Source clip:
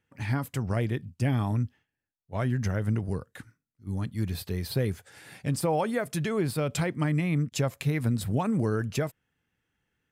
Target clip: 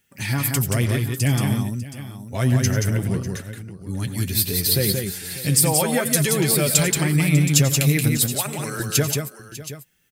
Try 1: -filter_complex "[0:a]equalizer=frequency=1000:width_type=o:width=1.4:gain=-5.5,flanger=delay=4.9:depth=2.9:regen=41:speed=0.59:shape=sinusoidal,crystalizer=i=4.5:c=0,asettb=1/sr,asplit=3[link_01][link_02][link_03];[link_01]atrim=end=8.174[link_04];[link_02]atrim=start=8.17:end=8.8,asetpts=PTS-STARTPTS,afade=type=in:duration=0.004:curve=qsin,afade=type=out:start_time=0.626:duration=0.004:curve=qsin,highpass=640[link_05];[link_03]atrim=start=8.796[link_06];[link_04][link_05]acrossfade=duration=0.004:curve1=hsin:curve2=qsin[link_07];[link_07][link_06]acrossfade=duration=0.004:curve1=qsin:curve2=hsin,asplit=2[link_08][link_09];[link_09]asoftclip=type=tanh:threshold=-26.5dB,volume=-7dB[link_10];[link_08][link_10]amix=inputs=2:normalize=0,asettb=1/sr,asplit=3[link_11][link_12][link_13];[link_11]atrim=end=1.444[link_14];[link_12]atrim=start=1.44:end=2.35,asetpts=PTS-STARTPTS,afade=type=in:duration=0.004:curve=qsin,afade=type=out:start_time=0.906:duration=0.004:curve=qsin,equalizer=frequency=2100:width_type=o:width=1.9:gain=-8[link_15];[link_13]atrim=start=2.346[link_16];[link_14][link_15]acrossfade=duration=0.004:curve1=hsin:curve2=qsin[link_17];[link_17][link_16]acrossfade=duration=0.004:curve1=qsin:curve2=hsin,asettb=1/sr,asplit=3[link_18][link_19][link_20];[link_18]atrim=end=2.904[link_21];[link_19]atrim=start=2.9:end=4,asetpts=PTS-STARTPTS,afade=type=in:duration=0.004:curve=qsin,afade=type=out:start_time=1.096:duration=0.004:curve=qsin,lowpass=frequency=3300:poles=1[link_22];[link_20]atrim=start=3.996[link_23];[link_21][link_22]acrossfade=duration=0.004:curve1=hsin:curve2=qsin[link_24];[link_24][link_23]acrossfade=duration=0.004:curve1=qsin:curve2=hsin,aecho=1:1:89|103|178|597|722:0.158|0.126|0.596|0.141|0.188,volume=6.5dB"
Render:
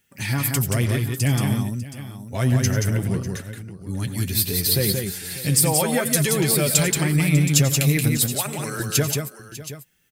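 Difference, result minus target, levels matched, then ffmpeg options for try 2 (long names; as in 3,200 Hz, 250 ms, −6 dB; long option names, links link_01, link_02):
soft clipping: distortion +8 dB
-filter_complex "[0:a]equalizer=frequency=1000:width_type=o:width=1.4:gain=-5.5,flanger=delay=4.9:depth=2.9:regen=41:speed=0.59:shape=sinusoidal,crystalizer=i=4.5:c=0,asettb=1/sr,asplit=3[link_01][link_02][link_03];[link_01]atrim=end=8.174[link_04];[link_02]atrim=start=8.17:end=8.8,asetpts=PTS-STARTPTS,afade=type=in:duration=0.004:curve=qsin,afade=type=out:start_time=0.626:duration=0.004:curve=qsin,highpass=640[link_05];[link_03]atrim=start=8.796[link_06];[link_04][link_05]acrossfade=duration=0.004:curve1=hsin:curve2=qsin[link_07];[link_07][link_06]acrossfade=duration=0.004:curve1=qsin:curve2=hsin,asplit=2[link_08][link_09];[link_09]asoftclip=type=tanh:threshold=-19dB,volume=-7dB[link_10];[link_08][link_10]amix=inputs=2:normalize=0,asettb=1/sr,asplit=3[link_11][link_12][link_13];[link_11]atrim=end=1.444[link_14];[link_12]atrim=start=1.44:end=2.35,asetpts=PTS-STARTPTS,afade=type=in:duration=0.004:curve=qsin,afade=type=out:start_time=0.906:duration=0.004:curve=qsin,equalizer=frequency=2100:width_type=o:width=1.9:gain=-8[link_15];[link_13]atrim=start=2.346[link_16];[link_14][link_15]acrossfade=duration=0.004:curve1=hsin:curve2=qsin[link_17];[link_17][link_16]acrossfade=duration=0.004:curve1=qsin:curve2=hsin,asettb=1/sr,asplit=3[link_18][link_19][link_20];[link_18]atrim=end=2.904[link_21];[link_19]atrim=start=2.9:end=4,asetpts=PTS-STARTPTS,afade=type=in:duration=0.004:curve=qsin,afade=type=out:start_time=1.096:duration=0.004:curve=qsin,lowpass=frequency=3300:poles=1[link_22];[link_20]atrim=start=3.996[link_23];[link_21][link_22]acrossfade=duration=0.004:curve1=hsin:curve2=qsin[link_24];[link_24][link_23]acrossfade=duration=0.004:curve1=qsin:curve2=hsin,aecho=1:1:89|103|178|597|722:0.158|0.126|0.596|0.141|0.188,volume=6.5dB"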